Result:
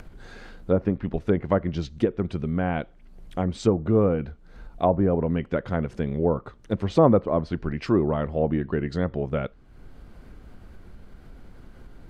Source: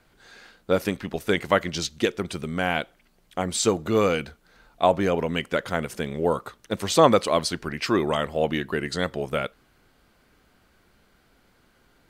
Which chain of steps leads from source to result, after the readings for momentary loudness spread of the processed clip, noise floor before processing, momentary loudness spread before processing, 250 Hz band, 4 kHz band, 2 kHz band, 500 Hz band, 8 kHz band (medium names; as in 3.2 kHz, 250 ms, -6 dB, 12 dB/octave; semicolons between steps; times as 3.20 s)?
9 LU, -62 dBFS, 9 LU, +3.0 dB, -14.5 dB, -9.5 dB, -0.5 dB, under -15 dB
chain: tilt EQ -3.5 dB/octave; upward compressor, threshold -29 dBFS; treble shelf 8.9 kHz +9.5 dB; low-pass that closes with the level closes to 1.2 kHz, closed at -14 dBFS; trim -4 dB